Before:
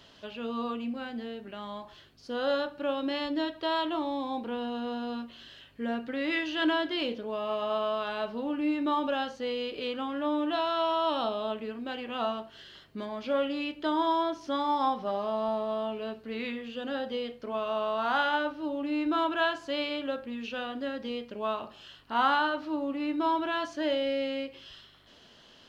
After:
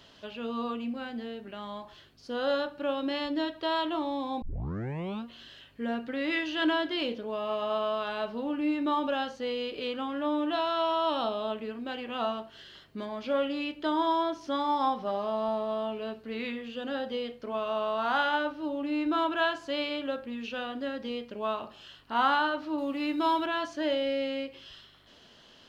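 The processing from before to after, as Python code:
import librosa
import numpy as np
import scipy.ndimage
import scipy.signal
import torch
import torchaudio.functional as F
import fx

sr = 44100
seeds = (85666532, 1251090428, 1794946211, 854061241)

y = fx.high_shelf(x, sr, hz=2600.0, db=9.5, at=(22.78, 23.46))
y = fx.edit(y, sr, fx.tape_start(start_s=4.42, length_s=0.83), tone=tone)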